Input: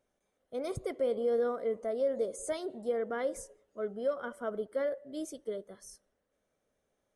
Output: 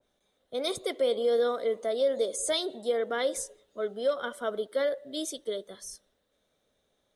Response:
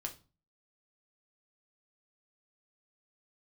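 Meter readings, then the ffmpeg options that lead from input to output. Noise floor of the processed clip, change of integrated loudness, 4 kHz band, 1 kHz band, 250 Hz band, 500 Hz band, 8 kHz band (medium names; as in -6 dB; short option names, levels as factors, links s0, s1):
-76 dBFS, +4.5 dB, +18.0 dB, +5.0 dB, +1.5 dB, +4.0 dB, +10.5 dB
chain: -filter_complex "[0:a]equalizer=f=3700:t=o:w=0.35:g=14,acrossover=split=250|4400[s0][s1][s2];[s0]acompressor=threshold=0.00112:ratio=6[s3];[s3][s1][s2]amix=inputs=3:normalize=0,adynamicequalizer=threshold=0.00251:dfrequency=2100:dqfactor=0.7:tfrequency=2100:tqfactor=0.7:attack=5:release=100:ratio=0.375:range=3:mode=boostabove:tftype=highshelf,volume=1.68"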